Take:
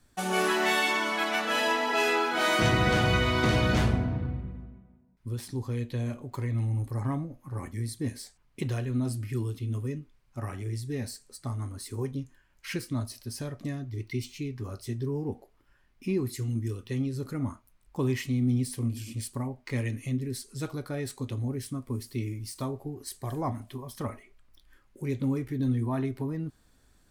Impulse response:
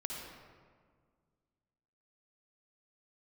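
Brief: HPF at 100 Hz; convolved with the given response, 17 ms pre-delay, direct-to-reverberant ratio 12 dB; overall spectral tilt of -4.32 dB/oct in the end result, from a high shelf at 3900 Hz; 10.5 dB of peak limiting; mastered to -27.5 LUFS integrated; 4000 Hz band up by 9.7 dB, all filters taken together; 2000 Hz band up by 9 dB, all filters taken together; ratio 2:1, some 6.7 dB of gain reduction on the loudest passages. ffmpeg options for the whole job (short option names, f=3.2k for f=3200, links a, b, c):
-filter_complex "[0:a]highpass=100,equalizer=f=2k:t=o:g=8.5,highshelf=f=3.9k:g=6,equalizer=f=4k:t=o:g=6,acompressor=threshold=-27dB:ratio=2,alimiter=limit=-22.5dB:level=0:latency=1,asplit=2[a][b];[1:a]atrim=start_sample=2205,adelay=17[c];[b][c]afir=irnorm=-1:irlink=0,volume=-12.5dB[d];[a][d]amix=inputs=2:normalize=0,volume=5dB"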